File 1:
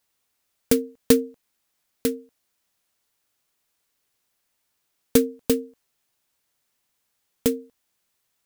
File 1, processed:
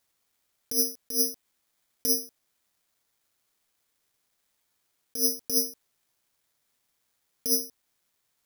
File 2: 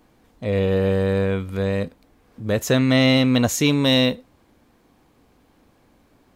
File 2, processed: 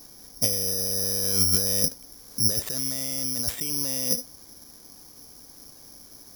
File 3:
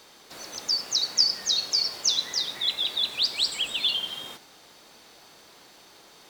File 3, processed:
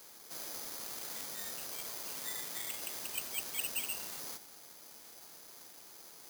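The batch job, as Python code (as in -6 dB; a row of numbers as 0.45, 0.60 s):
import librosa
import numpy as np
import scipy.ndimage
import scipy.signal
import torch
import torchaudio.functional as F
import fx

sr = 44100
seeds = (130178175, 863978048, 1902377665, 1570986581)

y = (np.kron(scipy.signal.resample_poly(x, 1, 8), np.eye(8)[0]) * 8)[:len(x)]
y = fx.over_compress(y, sr, threshold_db=-19.0, ratio=-1.0)
y = y * librosa.db_to_amplitude(-7.0)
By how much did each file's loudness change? -2.0, -3.5, -14.5 LU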